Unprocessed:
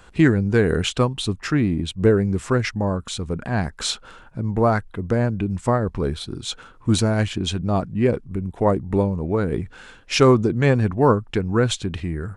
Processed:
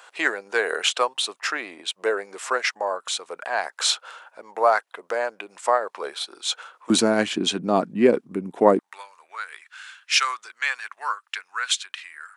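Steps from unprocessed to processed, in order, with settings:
high-pass filter 580 Hz 24 dB per octave, from 0:06.90 230 Hz, from 0:08.79 1,300 Hz
level +3.5 dB

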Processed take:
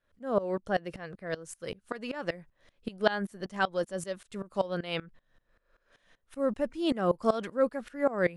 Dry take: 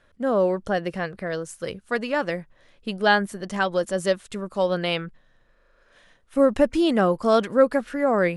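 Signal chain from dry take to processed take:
tremolo with a ramp in dB swelling 5.2 Hz, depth 20 dB
level −1.5 dB

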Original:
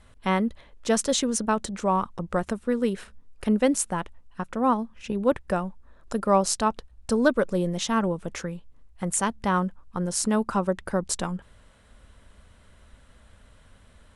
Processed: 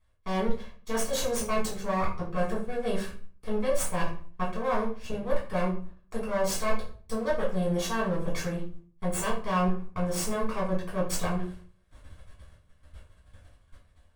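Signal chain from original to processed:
lower of the sound and its delayed copy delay 1.8 ms
reversed playback
downward compressor 5 to 1, threshold −32 dBFS, peak gain reduction 15.5 dB
reversed playback
noise gate −51 dBFS, range −20 dB
convolution reverb RT60 0.45 s, pre-delay 5 ms, DRR −7 dB
level −4 dB

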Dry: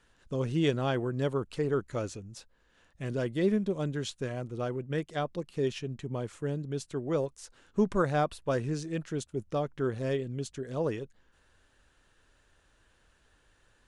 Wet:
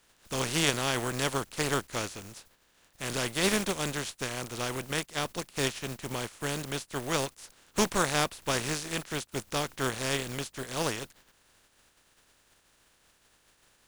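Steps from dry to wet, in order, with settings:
compressing power law on the bin magnitudes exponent 0.39

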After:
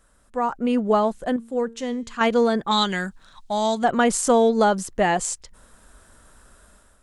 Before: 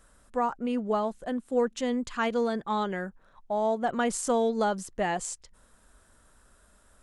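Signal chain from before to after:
0:02.71–0:03.84: octave-band graphic EQ 500/4,000/8,000 Hz −9/+12/+11 dB
automatic gain control gain up to 9.5 dB
0:01.36–0:02.21: tuned comb filter 230 Hz, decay 0.54 s, harmonics all, mix 60%
level −1 dB

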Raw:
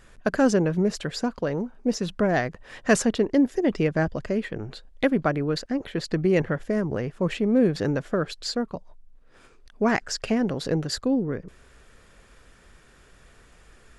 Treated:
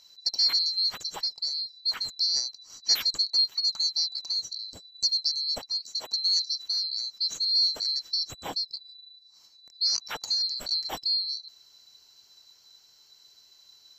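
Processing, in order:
neighbouring bands swapped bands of 4,000 Hz
0:05.76–0:06.61: high-pass filter 390 Hz → 910 Hz 6 dB per octave
level −4.5 dB

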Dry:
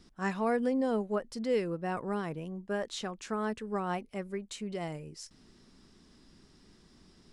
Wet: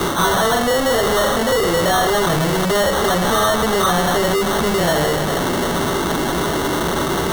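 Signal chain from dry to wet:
mu-law and A-law mismatch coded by mu
0:02.25–0:04.86: parametric band 68 Hz +13 dB 2.8 octaves
delay with a high-pass on its return 156 ms, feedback 75%, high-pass 2,200 Hz, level −7 dB
convolution reverb RT60 0.60 s, pre-delay 3 ms, DRR −8 dB
brickwall limiter −9 dBFS, peak gain reduction 10.5 dB
mid-hump overdrive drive 34 dB, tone 2,700 Hz, clips at −9 dBFS
parametric band 250 Hz −8.5 dB 1.3 octaves
decimation without filtering 18×
multiband upward and downward compressor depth 70%

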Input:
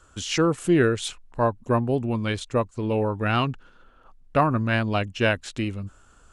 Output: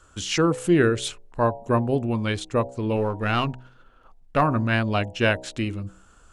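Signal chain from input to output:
0:02.96–0:04.42: gain on one half-wave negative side −3 dB
hum removal 63.11 Hz, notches 15
level +1 dB

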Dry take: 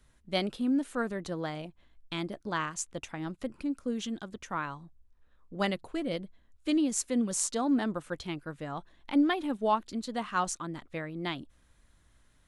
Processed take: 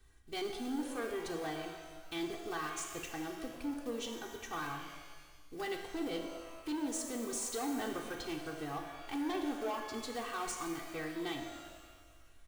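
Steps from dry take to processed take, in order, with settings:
one scale factor per block 5 bits
brickwall limiter −23.5 dBFS, peak gain reduction 10 dB
comb filter 2.6 ms, depth 100%
soft clipping −29.5 dBFS, distortion −11 dB
reverb with rising layers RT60 1.5 s, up +12 semitones, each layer −8 dB, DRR 3.5 dB
level −5 dB

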